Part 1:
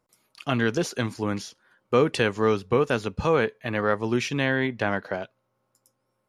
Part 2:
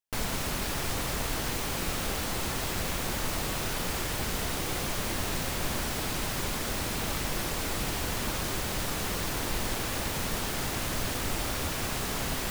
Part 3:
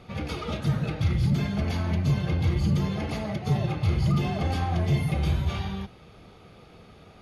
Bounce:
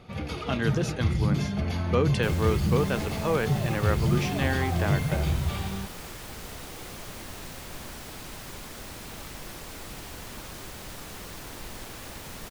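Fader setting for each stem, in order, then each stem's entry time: -5.0, -9.0, -1.5 dB; 0.00, 2.10, 0.00 s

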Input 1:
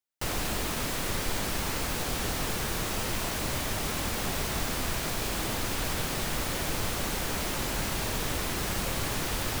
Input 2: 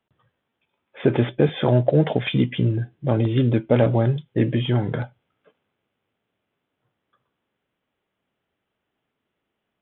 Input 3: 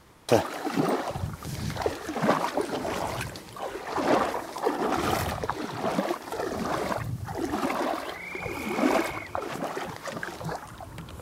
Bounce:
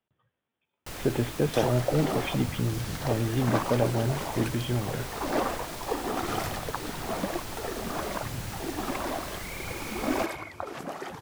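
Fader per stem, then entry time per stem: -8.0, -8.0, -4.5 dB; 0.65, 0.00, 1.25 s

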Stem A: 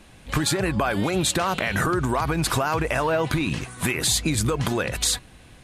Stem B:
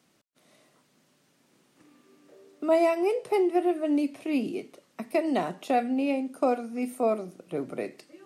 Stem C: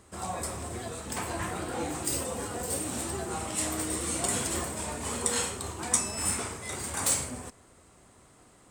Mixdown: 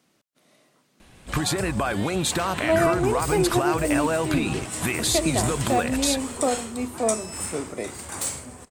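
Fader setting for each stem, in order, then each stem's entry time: -2.0, +1.0, -2.0 dB; 1.00, 0.00, 1.15 s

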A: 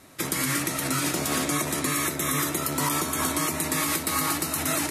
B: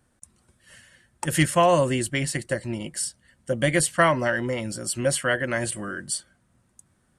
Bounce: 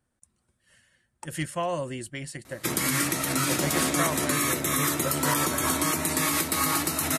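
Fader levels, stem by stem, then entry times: +0.5, -10.5 dB; 2.45, 0.00 s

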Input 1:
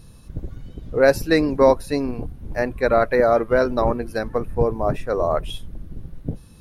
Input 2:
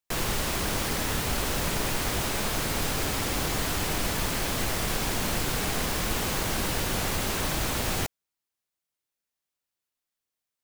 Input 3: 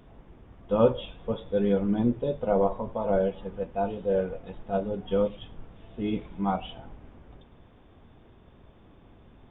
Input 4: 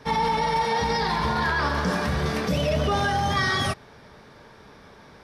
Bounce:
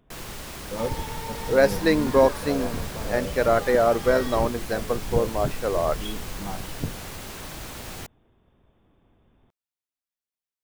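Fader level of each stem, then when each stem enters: -3.0, -9.0, -8.5, -14.0 dB; 0.55, 0.00, 0.00, 0.70 s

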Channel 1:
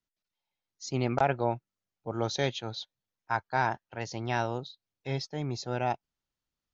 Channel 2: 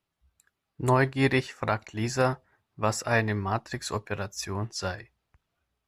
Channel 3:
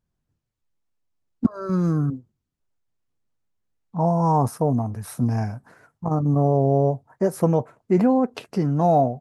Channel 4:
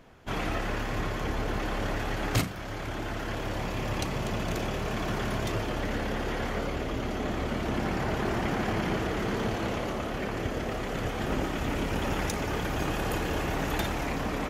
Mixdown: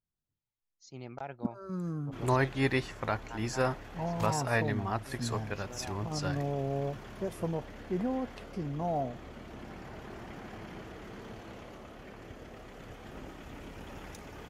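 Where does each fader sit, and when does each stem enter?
-15.5, -5.0, -14.5, -16.0 dB; 0.00, 1.40, 0.00, 1.85 s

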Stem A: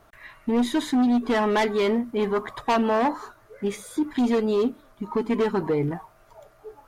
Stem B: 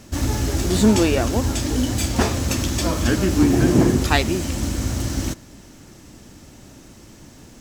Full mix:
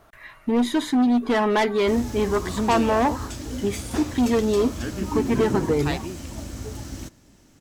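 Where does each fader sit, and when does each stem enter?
+1.5, -11.0 dB; 0.00, 1.75 s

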